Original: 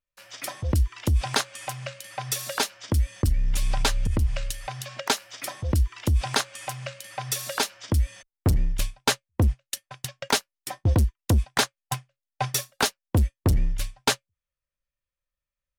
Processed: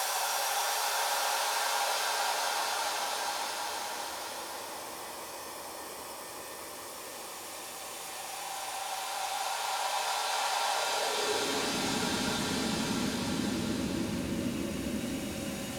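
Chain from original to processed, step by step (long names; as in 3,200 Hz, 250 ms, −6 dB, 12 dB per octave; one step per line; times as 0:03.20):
extreme stretch with random phases 7.7×, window 1.00 s, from 0:02.38
high-pass filter sweep 750 Hz → 230 Hz, 0:10.74–0:11.80
level −3 dB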